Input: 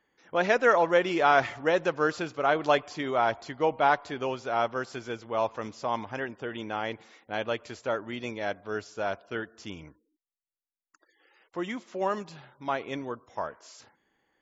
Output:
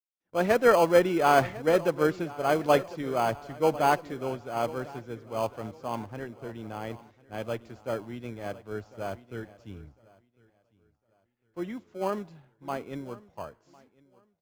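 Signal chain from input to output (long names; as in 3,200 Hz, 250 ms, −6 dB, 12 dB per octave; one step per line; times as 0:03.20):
noise gate with hold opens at −52 dBFS
spectral tilt −2.5 dB per octave
in parallel at −10.5 dB: decimation without filtering 24×
on the sum: repeating echo 1,053 ms, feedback 49%, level −15 dB
multiband upward and downward expander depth 70%
level −5.5 dB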